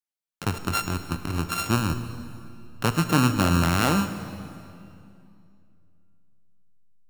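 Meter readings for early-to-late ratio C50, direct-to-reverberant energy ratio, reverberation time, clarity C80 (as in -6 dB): 10.0 dB, 9.0 dB, 2.5 s, 11.0 dB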